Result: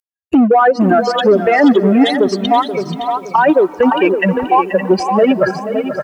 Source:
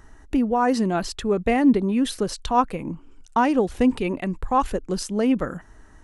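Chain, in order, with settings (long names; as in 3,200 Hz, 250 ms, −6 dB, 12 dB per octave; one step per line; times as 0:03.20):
spectral dynamics exaggerated over time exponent 3
camcorder AGC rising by 47 dB per second
in parallel at −4 dB: gain into a clipping stage and back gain 24 dB
on the sum: noise gate with hold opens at −55 dBFS
high-pass filter 400 Hz 12 dB per octave
downward compressor 6 to 1, threshold −22 dBFS, peak gain reduction 8 dB
treble cut that deepens with the level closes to 1,700 Hz, closed at −27.5 dBFS
single-tap delay 564 ms −10.5 dB
on a send at −22.5 dB: convolution reverb RT60 3.4 s, pre-delay 110 ms
on the sum: boost into a limiter +20.5 dB
feedback echo at a low word length 481 ms, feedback 35%, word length 7 bits, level −11 dB
level −2 dB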